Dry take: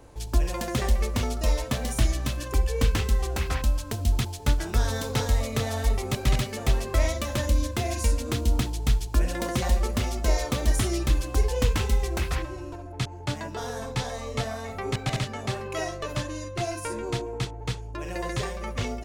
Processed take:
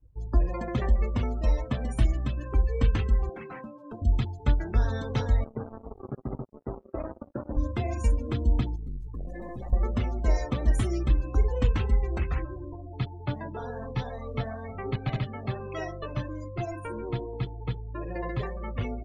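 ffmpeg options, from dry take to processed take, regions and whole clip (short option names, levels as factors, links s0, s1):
-filter_complex "[0:a]asettb=1/sr,asplit=3[s0][s1][s2];[s0]atrim=end=3.294[s3];[s1]atrim=start=3.29:end=4.02,asetpts=PTS-STARTPTS,afade=t=in:d=0.004:c=qsin,afade=t=out:st=0.726:d=0.004:c=qsin,highpass=f=170:w=0.5412,highpass=f=170:w=1.3066,highshelf=f=6000:g=-11.5,aeval=exprs='0.0355*(abs(mod(val(0)/0.0355+3,4)-2)-1)':c=same[s4];[s2]atrim=start=4.016[s5];[s3][s4]acrossfade=d=0.004:c1=hsin:c2=qsin[s6];[s6][s5]acrossfade=d=0.004:c1=qsin:c2=hsin,asettb=1/sr,asplit=3[s7][s8][s9];[s7]atrim=end=5.444[s10];[s8]atrim=start=5.44:end=7.57,asetpts=PTS-STARTPTS,afade=t=in:d=0.004:c=qsin,afade=t=out:st=2.126:d=0.004:c=qsin,bandpass=f=340:t=q:w=1.2,acrusher=bits=4:mix=0:aa=0.5[s11];[s9]atrim=start=7.566[s12];[s10][s11]acrossfade=d=0.004:c1=hsin:c2=qsin[s13];[s13][s12]acrossfade=d=0.004:c1=qsin:c2=hsin,asettb=1/sr,asplit=3[s14][s15][s16];[s14]atrim=end=8.764[s17];[s15]atrim=start=8.76:end=9.73,asetpts=PTS-STARTPTS,afade=t=in:d=0.004:c=qsin,afade=t=out:st=0.966:d=0.004:c=qsin,aemphasis=mode=production:type=cd,aeval=exprs='(tanh(44.7*val(0)+0.45)-tanh(0.45))/44.7':c=same,bandreject=f=1400:w=11[s18];[s16]atrim=start=9.726[s19];[s17][s18]acrossfade=d=0.004:c1=hsin:c2=qsin[s20];[s20][s19]acrossfade=d=0.004:c1=qsin:c2=hsin,highshelf=f=2100:g=-6.5,afftdn=nr=34:nf=-38,adynamicequalizer=threshold=0.00562:dfrequency=620:dqfactor=0.77:tfrequency=620:tqfactor=0.77:attack=5:release=100:ratio=0.375:range=2:mode=cutabove:tftype=bell"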